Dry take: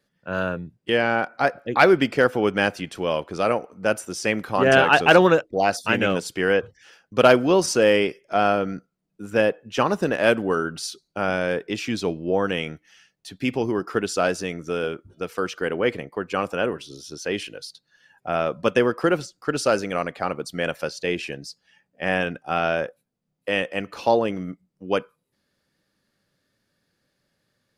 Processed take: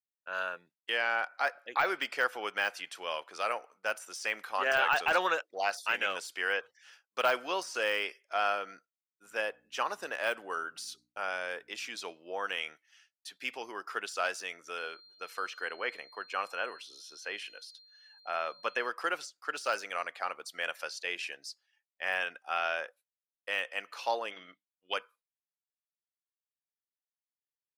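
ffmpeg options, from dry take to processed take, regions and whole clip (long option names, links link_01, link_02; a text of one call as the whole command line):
ffmpeg -i in.wav -filter_complex "[0:a]asettb=1/sr,asplit=3[link_01][link_02][link_03];[link_01]atrim=end=9.234[link_04];[link_02]atrim=start=9.23:end=12.02,asetpts=PTS-STARTPTS,afade=type=in:duration=0.004:curve=qsin,afade=type=out:start_time=2.786:duration=0.004:curve=qsin,aeval=exprs='val(0)+0.0178*(sin(2*PI*60*n/s)+sin(2*PI*2*60*n/s)/2+sin(2*PI*3*60*n/s)/3+sin(2*PI*4*60*n/s)/4+sin(2*PI*5*60*n/s)/5)':channel_layout=same,equalizer=frequency=2700:width=0.41:gain=-3[link_05];[link_03]atrim=start=12.016[link_06];[link_04][link_05]acrossfade=duration=0.004:curve1=hsin:curve2=qsin[link_07];[link_07][link_06]acrossfade=duration=0.004:curve1=qsin:curve2=hsin,asettb=1/sr,asplit=3[link_08][link_09][link_10];[link_08]atrim=end=14.784[link_11];[link_09]atrim=start=14.78:end=18.89,asetpts=PTS-STARTPTS,afade=type=in:duration=0.004:curve=qsin,afade=type=out:start_time=4.106:duration=0.004:curve=qsin,acrossover=split=2800[link_12][link_13];[link_13]acompressor=threshold=-42dB:ratio=4:attack=1:release=60[link_14];[link_12][link_14]amix=inputs=2:normalize=0,aeval=exprs='val(0)+0.00316*sin(2*PI*4200*n/s)':channel_layout=same[link_15];[link_10]atrim=start=18.886[link_16];[link_11][link_15]acrossfade=duration=0.004:curve1=hsin:curve2=qsin[link_17];[link_17][link_16]acrossfade=duration=0.004:curve1=qsin:curve2=hsin,asettb=1/sr,asplit=3[link_18][link_19][link_20];[link_18]atrim=end=24.314[link_21];[link_19]atrim=start=24.31:end=24.94,asetpts=PTS-STARTPTS,afade=type=in:duration=0.004:curve=qsin,afade=type=out:start_time=0.626:duration=0.004:curve=qsin,lowpass=frequency=3400:width_type=q:width=7.4,bandreject=frequency=50:width_type=h:width=6,bandreject=frequency=100:width_type=h:width=6,bandreject=frequency=150:width_type=h:width=6,bandreject=frequency=200:width_type=h:width=6,bandreject=frequency=250:width_type=h:width=6,bandreject=frequency=300:width_type=h:width=6[link_22];[link_20]atrim=start=24.936[link_23];[link_21][link_22]acrossfade=duration=0.004:curve1=hsin:curve2=qsin[link_24];[link_24][link_23]acrossfade=duration=0.004:curve1=qsin:curve2=hsin,highpass=1000,deesser=0.7,agate=range=-33dB:threshold=-49dB:ratio=3:detection=peak,volume=-4.5dB" out.wav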